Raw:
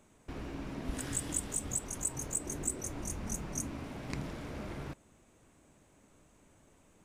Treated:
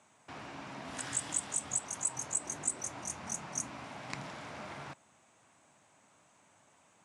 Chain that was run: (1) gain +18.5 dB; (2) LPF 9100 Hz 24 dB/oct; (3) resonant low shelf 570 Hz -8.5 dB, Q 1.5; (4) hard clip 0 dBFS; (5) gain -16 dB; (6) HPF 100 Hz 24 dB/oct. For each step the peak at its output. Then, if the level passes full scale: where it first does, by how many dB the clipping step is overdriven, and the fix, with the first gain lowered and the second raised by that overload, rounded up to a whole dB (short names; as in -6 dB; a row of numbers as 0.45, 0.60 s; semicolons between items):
-1.0, -2.0, -2.0, -2.0, -18.0, -18.0 dBFS; no overload